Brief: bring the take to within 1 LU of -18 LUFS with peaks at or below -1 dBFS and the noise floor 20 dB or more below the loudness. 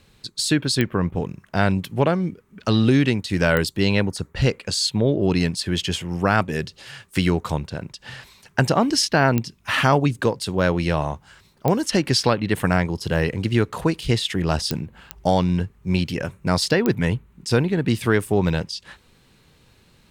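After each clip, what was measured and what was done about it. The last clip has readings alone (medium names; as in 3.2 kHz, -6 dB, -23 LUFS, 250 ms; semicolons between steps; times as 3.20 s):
clicks found 7; loudness -22.0 LUFS; peak level -4.5 dBFS; loudness target -18.0 LUFS
-> de-click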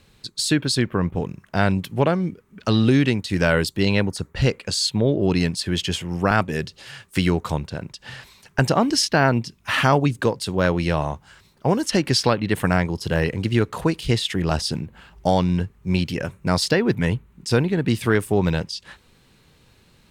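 clicks found 0; loudness -22.0 LUFS; peak level -4.0 dBFS; loudness target -18.0 LUFS
-> trim +4 dB; peak limiter -1 dBFS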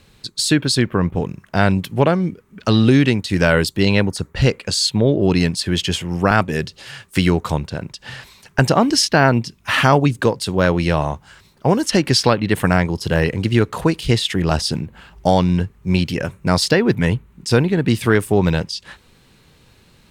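loudness -18.0 LUFS; peak level -1.0 dBFS; noise floor -53 dBFS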